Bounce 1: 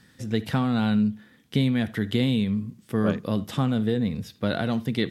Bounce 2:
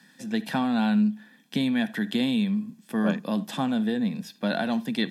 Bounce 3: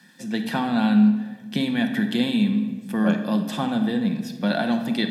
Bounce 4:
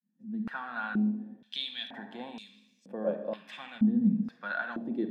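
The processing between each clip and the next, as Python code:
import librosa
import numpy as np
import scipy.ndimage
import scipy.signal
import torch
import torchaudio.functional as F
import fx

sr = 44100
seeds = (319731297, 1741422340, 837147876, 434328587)

y1 = scipy.signal.sosfilt(scipy.signal.butter(6, 180.0, 'highpass', fs=sr, output='sos'), x)
y1 = y1 + 0.53 * np.pad(y1, (int(1.2 * sr / 1000.0), 0))[:len(y1)]
y2 = fx.room_shoebox(y1, sr, seeds[0], volume_m3=1300.0, walls='mixed', distance_m=0.91)
y2 = y2 * 10.0 ** (2.0 / 20.0)
y3 = fx.fade_in_head(y2, sr, length_s=0.79)
y3 = fx.filter_held_bandpass(y3, sr, hz=2.1, low_hz=210.0, high_hz=5600.0)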